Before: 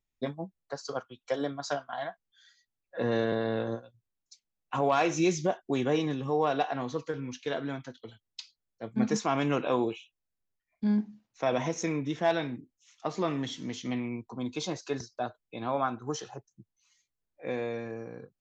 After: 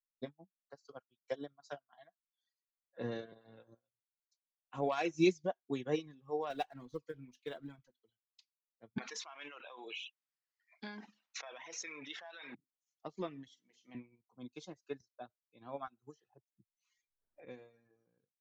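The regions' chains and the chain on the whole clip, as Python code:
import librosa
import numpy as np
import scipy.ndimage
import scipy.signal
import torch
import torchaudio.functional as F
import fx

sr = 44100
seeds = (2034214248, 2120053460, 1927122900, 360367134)

y = fx.chain(x, sr, fx.law_mismatch(coded='mu'),
    fx.low_shelf(hz=72.0, db=9.0), at=(6.5, 7.91))
y = fx.chain(y, sr, fx.highpass(hz=1100.0, slope=12),
    fx.air_absorb(metres=140.0),
    fx.env_flatten(amount_pct=100), at=(8.98, 12.55))
y = fx.chain(y, sr, fx.highpass(hz=450.0, slope=6),
    fx.doubler(ms=47.0, db=-6), at=(13.48, 13.95))
y = fx.chain(y, sr, fx.high_shelf(hz=5600.0, db=-3.5),
    fx.band_squash(depth_pct=100), at=(15.87, 17.45))
y = fx.dereverb_blind(y, sr, rt60_s=1.5)
y = fx.dynamic_eq(y, sr, hz=1000.0, q=0.92, threshold_db=-40.0, ratio=4.0, max_db=-4)
y = fx.upward_expand(y, sr, threshold_db=-42.0, expansion=2.5)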